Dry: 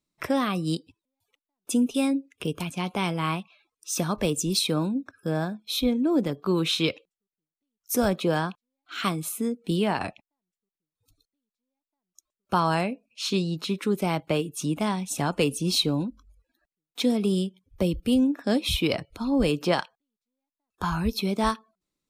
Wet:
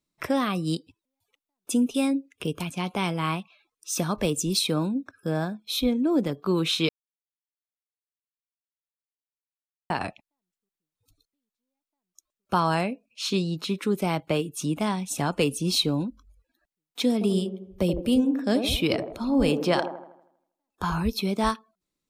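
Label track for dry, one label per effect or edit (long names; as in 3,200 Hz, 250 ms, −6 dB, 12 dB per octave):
6.890000	9.900000	silence
17.130000	21.030000	delay with a band-pass on its return 80 ms, feedback 48%, band-pass 470 Hz, level −5 dB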